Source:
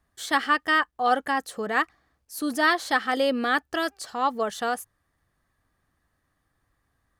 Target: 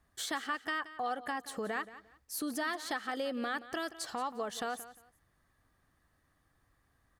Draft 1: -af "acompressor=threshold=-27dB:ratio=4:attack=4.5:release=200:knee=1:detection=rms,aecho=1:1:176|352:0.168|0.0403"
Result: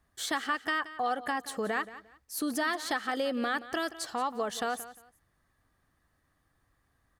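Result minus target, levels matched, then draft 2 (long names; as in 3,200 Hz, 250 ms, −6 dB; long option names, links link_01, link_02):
downward compressor: peak gain reduction −5 dB
-af "acompressor=threshold=-33.5dB:ratio=4:attack=4.5:release=200:knee=1:detection=rms,aecho=1:1:176|352:0.168|0.0403"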